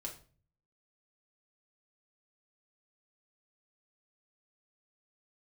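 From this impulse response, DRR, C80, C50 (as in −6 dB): −0.5 dB, 15.5 dB, 10.0 dB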